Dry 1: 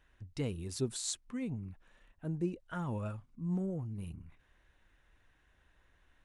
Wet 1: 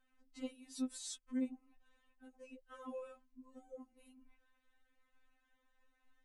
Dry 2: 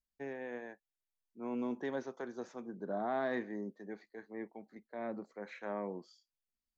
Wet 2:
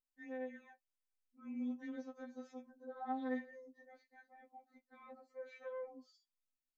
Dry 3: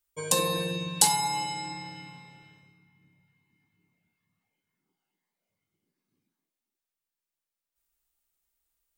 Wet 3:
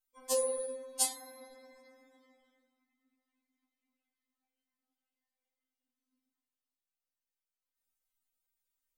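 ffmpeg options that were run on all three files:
-af "afftfilt=real='re*3.46*eq(mod(b,12),0)':imag='im*3.46*eq(mod(b,12),0)':win_size=2048:overlap=0.75,volume=-5.5dB"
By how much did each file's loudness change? −7.0, −4.5, −7.0 LU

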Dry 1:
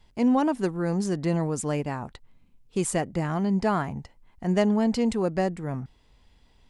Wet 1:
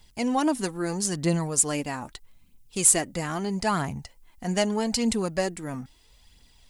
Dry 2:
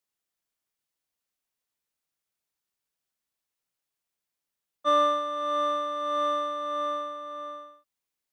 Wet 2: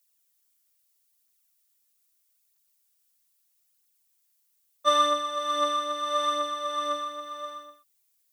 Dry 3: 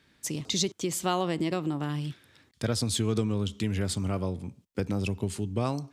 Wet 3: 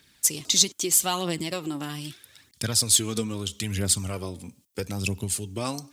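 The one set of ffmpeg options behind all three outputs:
-af "crystalizer=i=5:c=0,aphaser=in_gain=1:out_gain=1:delay=4.3:decay=0.43:speed=0.78:type=triangular,volume=-3dB"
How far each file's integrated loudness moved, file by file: +1.0, +0.5, +5.5 LU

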